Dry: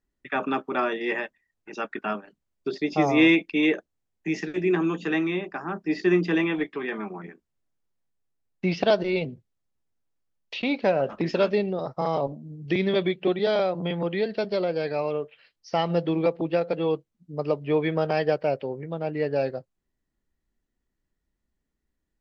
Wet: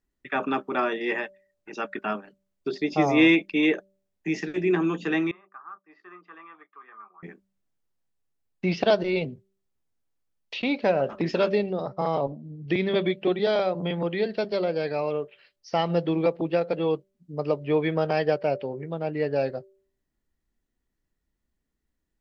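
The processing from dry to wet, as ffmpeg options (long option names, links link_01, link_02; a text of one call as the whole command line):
ffmpeg -i in.wav -filter_complex "[0:a]asettb=1/sr,asplit=3[link_01][link_02][link_03];[link_01]atrim=end=5.314[link_04];[link_02]atrim=start=5.31:end=7.23,asetpts=PTS-STARTPTS,afade=type=in:duration=0.004:curve=qsin,afade=type=out:start_time=1.916:duration=0.004:curve=qsin,bandpass=frequency=1200:width_type=q:width=11[link_05];[link_03]atrim=start=7.226[link_06];[link_04][link_05]acrossfade=duration=0.004:curve1=hsin:curve2=qsin[link_07];[link_07][link_06]acrossfade=duration=0.004:curve1=qsin:curve2=hsin,asettb=1/sr,asplit=3[link_08][link_09][link_10];[link_08]atrim=end=11.824[link_11];[link_09]atrim=start=11.82:end=13.06,asetpts=PTS-STARTPTS,afade=type=in:duration=0.004:curve=qsin,afade=type=out:start_time=1.236:duration=0.004:curve=qsin,lowpass=4700[link_12];[link_10]atrim=start=13.056[link_13];[link_11][link_12]acrossfade=duration=0.004:curve1=hsin:curve2=qsin[link_14];[link_14][link_13]acrossfade=duration=0.004:curve1=qsin:curve2=hsin,bandreject=frequency=193.8:width_type=h:width=4,bandreject=frequency=387.6:width_type=h:width=4,bandreject=frequency=581.4:width_type=h:width=4" out.wav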